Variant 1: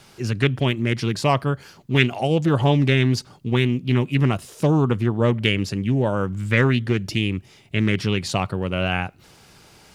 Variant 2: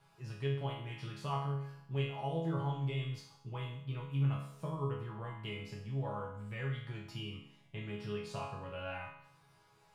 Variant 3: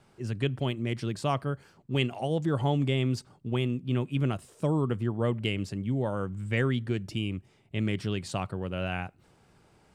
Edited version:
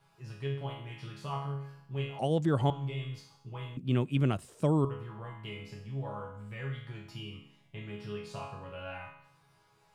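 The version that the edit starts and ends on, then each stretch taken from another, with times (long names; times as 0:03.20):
2
0:02.19–0:02.70: punch in from 3
0:03.77–0:04.85: punch in from 3
not used: 1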